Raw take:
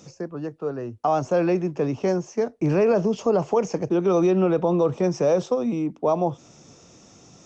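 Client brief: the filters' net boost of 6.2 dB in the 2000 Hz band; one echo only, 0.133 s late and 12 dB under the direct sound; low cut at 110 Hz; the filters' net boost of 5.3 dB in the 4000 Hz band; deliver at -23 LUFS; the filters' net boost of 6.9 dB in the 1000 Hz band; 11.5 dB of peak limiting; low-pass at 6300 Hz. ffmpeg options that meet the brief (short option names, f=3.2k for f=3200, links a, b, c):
-af "highpass=110,lowpass=6.3k,equalizer=f=1k:t=o:g=8.5,equalizer=f=2k:t=o:g=3.5,equalizer=f=4k:t=o:g=7,alimiter=limit=-16.5dB:level=0:latency=1,aecho=1:1:133:0.251,volume=2.5dB"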